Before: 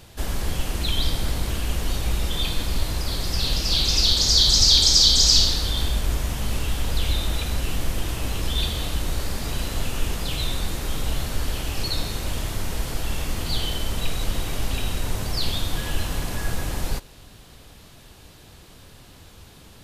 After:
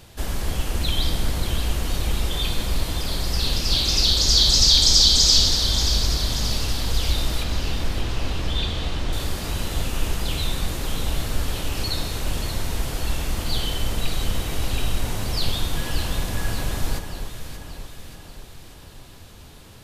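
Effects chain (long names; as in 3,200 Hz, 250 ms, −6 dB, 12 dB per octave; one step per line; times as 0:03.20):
0:07.43–0:09.13: low-pass filter 4,900 Hz 12 dB per octave
delay that swaps between a low-pass and a high-pass 291 ms, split 1,400 Hz, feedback 74%, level −6.5 dB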